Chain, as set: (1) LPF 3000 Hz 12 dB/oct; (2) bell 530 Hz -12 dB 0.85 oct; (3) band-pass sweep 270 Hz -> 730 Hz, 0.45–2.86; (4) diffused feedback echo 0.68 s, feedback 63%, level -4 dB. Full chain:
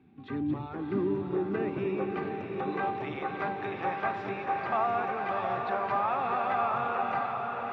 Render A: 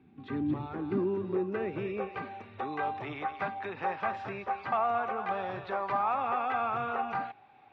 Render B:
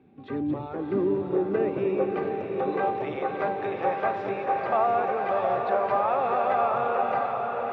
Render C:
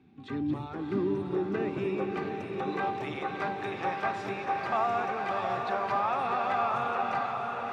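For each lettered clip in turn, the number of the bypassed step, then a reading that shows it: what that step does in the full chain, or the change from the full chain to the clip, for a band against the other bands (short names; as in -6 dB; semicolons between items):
4, echo-to-direct -2.0 dB to none; 2, 500 Hz band +6.0 dB; 1, 4 kHz band +4.5 dB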